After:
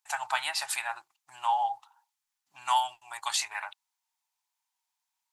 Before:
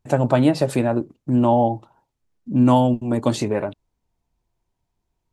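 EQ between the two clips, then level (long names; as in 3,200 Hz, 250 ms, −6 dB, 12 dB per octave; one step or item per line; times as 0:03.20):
elliptic high-pass filter 810 Hz, stop band 40 dB
dynamic equaliser 1,900 Hz, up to +4 dB, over −40 dBFS, Q 1.1
high-shelf EQ 3,000 Hz +11 dB
−5.0 dB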